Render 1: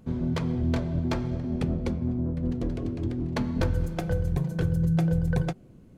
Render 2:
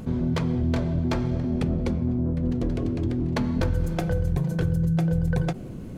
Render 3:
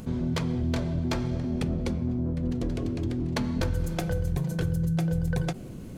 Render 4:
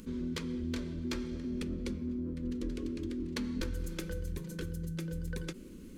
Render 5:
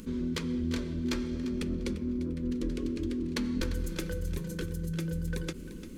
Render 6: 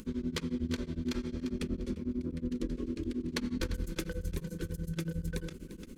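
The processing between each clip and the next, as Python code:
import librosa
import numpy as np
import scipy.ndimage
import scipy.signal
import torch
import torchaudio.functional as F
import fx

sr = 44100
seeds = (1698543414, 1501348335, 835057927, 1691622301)

y1 = fx.env_flatten(x, sr, amount_pct=50)
y2 = fx.high_shelf(y1, sr, hz=2900.0, db=8.0)
y2 = y2 * librosa.db_to_amplitude(-3.5)
y3 = fx.fixed_phaser(y2, sr, hz=300.0, stages=4)
y3 = y3 * librosa.db_to_amplitude(-5.0)
y4 = fx.echo_feedback(y3, sr, ms=347, feedback_pct=25, wet_db=-13.5)
y4 = y4 * librosa.db_to_amplitude(4.0)
y5 = y4 * np.abs(np.cos(np.pi * 11.0 * np.arange(len(y4)) / sr))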